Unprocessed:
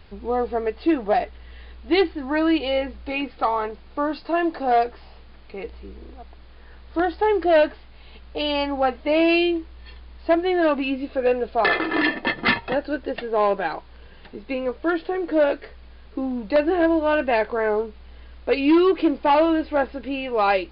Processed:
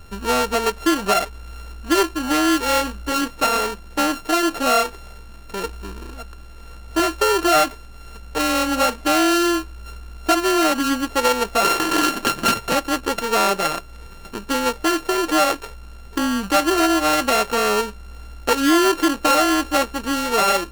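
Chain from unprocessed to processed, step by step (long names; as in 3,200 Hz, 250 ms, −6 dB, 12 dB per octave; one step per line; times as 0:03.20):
samples sorted by size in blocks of 32 samples
downward compressor 2.5 to 1, threshold −22 dBFS, peak gain reduction 6 dB
highs frequency-modulated by the lows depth 0.15 ms
level +6 dB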